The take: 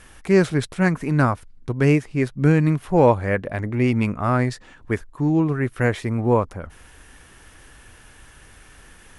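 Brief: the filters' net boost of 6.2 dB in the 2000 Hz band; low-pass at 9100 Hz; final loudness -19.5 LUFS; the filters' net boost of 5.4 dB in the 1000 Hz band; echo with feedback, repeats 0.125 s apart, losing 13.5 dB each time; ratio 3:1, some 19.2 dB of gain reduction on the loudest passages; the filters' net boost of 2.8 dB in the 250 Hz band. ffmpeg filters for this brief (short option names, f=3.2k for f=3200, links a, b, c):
-af "lowpass=9.1k,equalizer=f=250:t=o:g=3.5,equalizer=f=1k:t=o:g=5,equalizer=f=2k:t=o:g=6,acompressor=threshold=-35dB:ratio=3,aecho=1:1:125|250:0.211|0.0444,volume=15.5dB"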